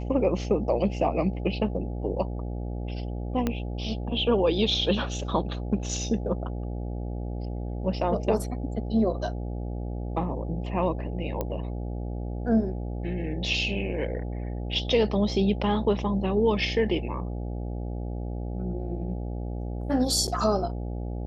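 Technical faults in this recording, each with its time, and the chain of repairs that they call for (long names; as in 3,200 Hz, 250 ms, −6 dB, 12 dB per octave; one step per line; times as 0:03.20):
mains buzz 60 Hz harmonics 14 −32 dBFS
0:03.47: click −13 dBFS
0:11.41: click −16 dBFS
0:20.27–0:20.28: drop-out 7.9 ms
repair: click removal
hum removal 60 Hz, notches 14
repair the gap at 0:20.27, 7.9 ms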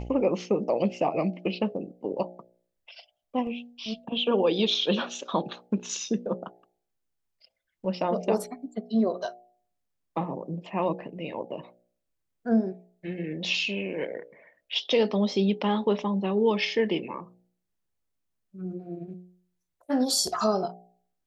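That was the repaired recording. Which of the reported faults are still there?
0:03.47: click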